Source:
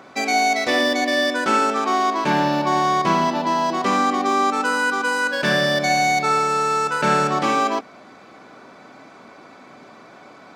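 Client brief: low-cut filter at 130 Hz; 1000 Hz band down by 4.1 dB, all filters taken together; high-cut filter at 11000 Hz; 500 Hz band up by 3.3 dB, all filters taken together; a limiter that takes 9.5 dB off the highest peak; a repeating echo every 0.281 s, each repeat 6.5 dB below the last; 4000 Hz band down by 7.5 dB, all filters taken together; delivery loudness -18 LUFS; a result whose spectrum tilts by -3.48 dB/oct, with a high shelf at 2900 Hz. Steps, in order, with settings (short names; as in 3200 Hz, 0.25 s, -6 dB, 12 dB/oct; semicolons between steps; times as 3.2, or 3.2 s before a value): HPF 130 Hz; LPF 11000 Hz; bell 500 Hz +6.5 dB; bell 1000 Hz -7 dB; high shelf 2900 Hz -7 dB; bell 4000 Hz -3.5 dB; limiter -16 dBFS; feedback echo 0.281 s, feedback 47%, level -6.5 dB; gain +5.5 dB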